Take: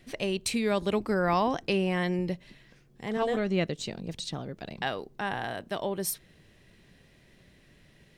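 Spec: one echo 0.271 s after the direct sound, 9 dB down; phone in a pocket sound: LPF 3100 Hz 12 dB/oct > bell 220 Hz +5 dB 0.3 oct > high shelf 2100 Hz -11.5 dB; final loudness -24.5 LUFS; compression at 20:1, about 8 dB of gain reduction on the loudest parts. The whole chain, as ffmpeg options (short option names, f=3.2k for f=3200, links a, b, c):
-af "acompressor=threshold=-29dB:ratio=20,lowpass=3.1k,equalizer=f=220:t=o:w=0.3:g=5,highshelf=f=2.1k:g=-11.5,aecho=1:1:271:0.355,volume=11dB"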